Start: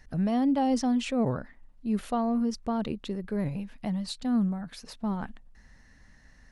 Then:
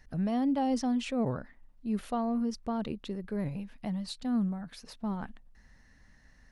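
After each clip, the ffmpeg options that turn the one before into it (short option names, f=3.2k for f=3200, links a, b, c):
-af "equalizer=f=7.4k:t=o:w=0.38:g=-2,volume=-3.5dB"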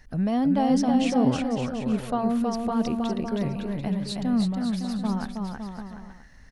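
-af "aecho=1:1:320|560|740|875|976.2:0.631|0.398|0.251|0.158|0.1,volume=5.5dB"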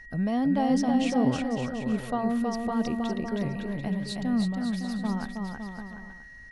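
-af "aeval=exprs='val(0)+0.00708*sin(2*PI*1900*n/s)':c=same,volume=-2.5dB"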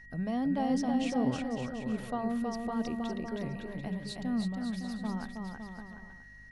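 -af "bandreject=f=50:t=h:w=6,bandreject=f=100:t=h:w=6,bandreject=f=150:t=h:w=6,bandreject=f=200:t=h:w=6,aeval=exprs='val(0)+0.00251*(sin(2*PI*50*n/s)+sin(2*PI*2*50*n/s)/2+sin(2*PI*3*50*n/s)/3+sin(2*PI*4*50*n/s)/4+sin(2*PI*5*50*n/s)/5)':c=same,volume=-5.5dB"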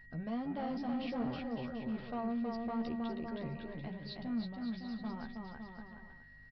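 -filter_complex "[0:a]aresample=11025,asoftclip=type=tanh:threshold=-28dB,aresample=44100,asplit=2[a][b];[b]adelay=13,volume=-6.5dB[c];[a][c]amix=inputs=2:normalize=0,volume=-4.5dB"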